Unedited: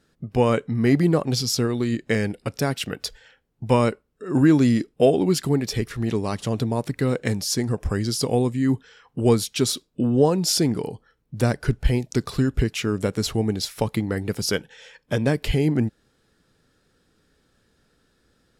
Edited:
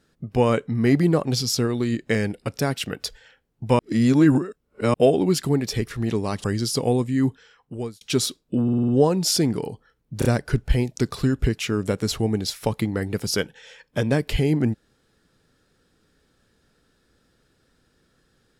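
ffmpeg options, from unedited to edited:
-filter_complex "[0:a]asplit=12[s0][s1][s2][s3][s4][s5][s6][s7][s8][s9][s10][s11];[s0]atrim=end=3.792[s12];[s1]atrim=start=3.788:end=4.942,asetpts=PTS-STARTPTS,areverse[s13];[s2]atrim=start=4.938:end=6.442[s14];[s3]atrim=start=7.898:end=9.47,asetpts=PTS-STARTPTS,afade=t=out:st=0.822:d=0.75[s15];[s4]atrim=start=9.47:end=10.142,asetpts=PTS-STARTPTS,afade=t=in:d=0.004:c=hsin[s16];[s5]atrim=start=10.088:end=10.142[s17];[s6]atrim=start=10.088:end=10.142[s18];[s7]atrim=start=10.088:end=10.142[s19];[s8]atrim=start=10.088:end=10.142[s20];[s9]atrim=start=10.088:end=11.432[s21];[s10]atrim=start=11.398:end=11.432[s22];[s11]atrim=start=11.398[s23];[s12][s13]acrossfade=d=0.004:c1=hsin:c2=hsin[s24];[s24][s14]acrossfade=d=0.004:c1=hsin:c2=hsin[s25];[s15][s16]concat=n=2:v=0:a=1[s26];[s25][s26]acrossfade=d=0.004:c1=hsin:c2=hsin[s27];[s27][s17]acrossfade=d=0.004:c1=hsin:c2=hsin[s28];[s28][s18]acrossfade=d=0.004:c1=hsin:c2=hsin[s29];[s29][s19]acrossfade=d=0.004:c1=hsin:c2=hsin[s30];[s30][s20]acrossfade=d=0.004:c1=hsin:c2=hsin[s31];[s31][s21]acrossfade=d=0.004:c1=hsin:c2=hsin[s32];[s32][s22]acrossfade=d=0.004:c1=hsin:c2=hsin[s33];[s33][s23]acrossfade=d=0.004:c1=hsin:c2=hsin"

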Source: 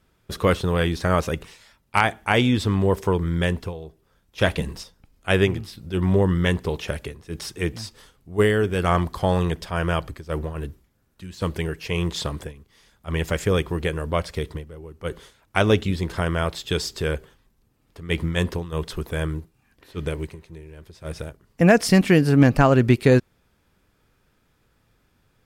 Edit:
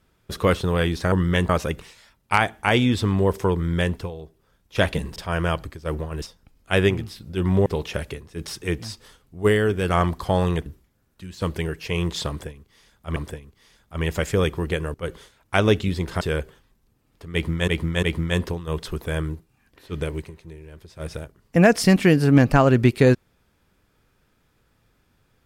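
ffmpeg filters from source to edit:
-filter_complex "[0:a]asplit=12[s0][s1][s2][s3][s4][s5][s6][s7][s8][s9][s10][s11];[s0]atrim=end=1.122[s12];[s1]atrim=start=6.228:end=6.602[s13];[s2]atrim=start=1.118:end=4.792[s14];[s3]atrim=start=9.598:end=10.662[s15];[s4]atrim=start=4.788:end=6.232[s16];[s5]atrim=start=6.598:end=9.602[s17];[s6]atrim=start=10.658:end=13.162[s18];[s7]atrim=start=12.288:end=14.072[s19];[s8]atrim=start=14.958:end=16.232[s20];[s9]atrim=start=16.958:end=18.432[s21];[s10]atrim=start=18.078:end=18.432[s22];[s11]atrim=start=18.078[s23];[s12][s13]acrossfade=d=0.004:c1=hsin:c2=hsin[s24];[s24][s14]acrossfade=d=0.004:c1=hsin:c2=hsin[s25];[s25][s15]acrossfade=d=0.004:c1=hsin:c2=hsin[s26];[s26][s16]acrossfade=d=0.004:c1=hsin:c2=hsin[s27];[s27][s17]acrossfade=d=0.004:c1=hsin:c2=hsin[s28];[s28][s18]acrossfade=d=0.004:c1=hsin:c2=hsin[s29];[s29][s19]acrossfade=d=0.004:c1=hsin:c2=hsin[s30];[s30][s20]acrossfade=d=0.004:c1=hsin:c2=hsin[s31];[s31][s21]acrossfade=d=0.004:c1=hsin:c2=hsin[s32];[s32][s22]acrossfade=d=0.004:c1=hsin:c2=hsin[s33];[s33][s23]acrossfade=d=0.004:c1=hsin:c2=hsin"

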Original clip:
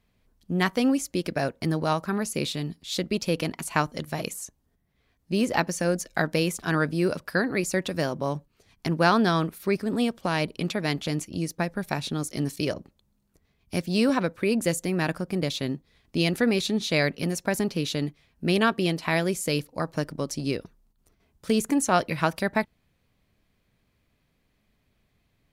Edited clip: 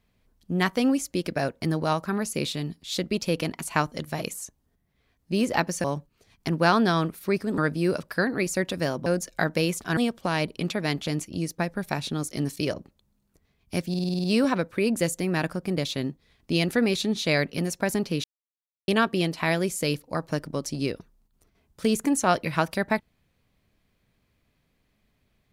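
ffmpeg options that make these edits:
-filter_complex "[0:a]asplit=14[s0][s1][s2][s3][s4][s5][s6][s7][s8][s9][s10][s11][s12][s13];[s0]atrim=end=5.842[s14];[s1]atrim=start=8.228:end=9.972[s15];[s2]atrim=start=6.748:end=8.232[s16];[s3]atrim=start=5.838:end=6.752[s17];[s4]atrim=start=9.968:end=13.942[s18];[s5]atrim=start=13.888:end=13.942[s19];[s6]atrim=start=13.888:end=13.942[s20];[s7]atrim=start=13.888:end=13.942[s21];[s8]atrim=start=13.888:end=13.942[s22];[s9]atrim=start=13.888:end=13.942[s23];[s10]atrim=start=13.888:end=13.942[s24];[s11]atrim=start=13.888:end=17.89,asetpts=PTS-STARTPTS,afade=t=out:st=3.998:d=0.004:c=hsin[s25];[s12]atrim=start=17.89:end=18.53,asetpts=PTS-STARTPTS,volume=0[s26];[s13]atrim=start=18.53,asetpts=PTS-STARTPTS,afade=t=in:d=0.004:c=hsin[s27];[s14][s15]acrossfade=d=0.004:c1=hsin:c2=hsin[s28];[s28][s16]acrossfade=d=0.004:c1=hsin:c2=hsin[s29];[s29][s17]acrossfade=d=0.004:c1=hsin:c2=hsin[s30];[s30][s18]acrossfade=d=0.004:c1=hsin:c2=hsin[s31];[s31][s19]acrossfade=d=0.004:c1=hsin:c2=hsin[s32];[s32][s20]acrossfade=d=0.004:c1=hsin:c2=hsin[s33];[s33][s21]acrossfade=d=0.004:c1=hsin:c2=hsin[s34];[s34][s22]acrossfade=d=0.004:c1=hsin:c2=hsin[s35];[s35][s23]acrossfade=d=0.004:c1=hsin:c2=hsin[s36];[s36][s24]acrossfade=d=0.004:c1=hsin:c2=hsin[s37];[s25][s26][s27]concat=n=3:v=0:a=1[s38];[s37][s38]acrossfade=d=0.004:c1=hsin:c2=hsin"

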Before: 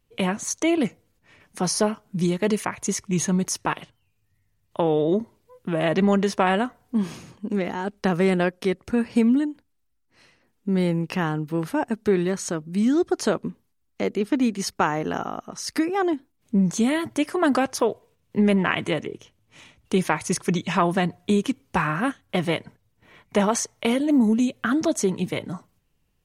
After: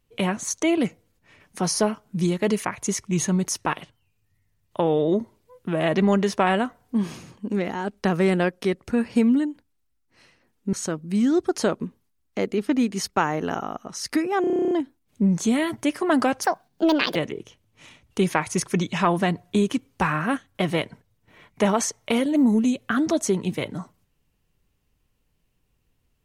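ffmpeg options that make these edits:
-filter_complex "[0:a]asplit=14[s0][s1][s2][s3][s4][s5][s6][s7][s8][s9][s10][s11][s12][s13];[s0]atrim=end=10.732[s14];[s1]atrim=start=12.358:end=16.072[s15];[s2]atrim=start=16.038:end=16.072[s16];[s3]atrim=start=16.038:end=16.072[s17];[s4]atrim=start=16.038:end=16.072[s18];[s5]atrim=start=16.038:end=16.072[s19];[s6]atrim=start=16.038:end=16.072[s20];[s7]atrim=start=16.038:end=16.072[s21];[s8]atrim=start=16.038:end=16.072[s22];[s9]atrim=start=16.038:end=16.072[s23];[s10]atrim=start=16.038:end=16.072[s24];[s11]atrim=start=16.038:end=17.774[s25];[s12]atrim=start=17.77:end=18.9,asetpts=PTS-STARTPTS,asetrate=69678,aresample=44100[s26];[s13]atrim=start=18.896[s27];[s14][s15]acrossfade=d=0.004:c1=hsin:c2=hsin[s28];[s28][s16]acrossfade=d=0.004:c1=hsin:c2=hsin[s29];[s29][s17]acrossfade=d=0.004:c1=hsin:c2=hsin[s30];[s30][s18]acrossfade=d=0.004:c1=hsin:c2=hsin[s31];[s31][s19]acrossfade=d=0.004:c1=hsin:c2=hsin[s32];[s32][s20]acrossfade=d=0.004:c1=hsin:c2=hsin[s33];[s33][s21]acrossfade=d=0.004:c1=hsin:c2=hsin[s34];[s34][s22]acrossfade=d=0.004:c1=hsin:c2=hsin[s35];[s35][s23]acrossfade=d=0.004:c1=hsin:c2=hsin[s36];[s36][s24]acrossfade=d=0.004:c1=hsin:c2=hsin[s37];[s37][s25]acrossfade=d=0.004:c1=hsin:c2=hsin[s38];[s38][s26]acrossfade=d=0.004:c1=hsin:c2=hsin[s39];[s39][s27]acrossfade=d=0.004:c1=hsin:c2=hsin"

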